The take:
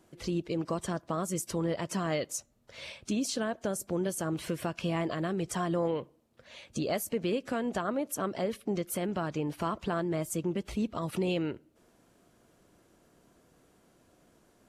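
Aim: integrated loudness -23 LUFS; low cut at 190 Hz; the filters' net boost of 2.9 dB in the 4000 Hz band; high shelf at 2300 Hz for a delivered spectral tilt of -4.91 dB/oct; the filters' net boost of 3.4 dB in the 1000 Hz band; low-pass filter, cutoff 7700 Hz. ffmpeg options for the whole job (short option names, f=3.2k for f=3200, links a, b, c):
-af "highpass=190,lowpass=7.7k,equalizer=f=1k:t=o:g=5,highshelf=f=2.3k:g=-5,equalizer=f=4k:t=o:g=8.5,volume=10dB"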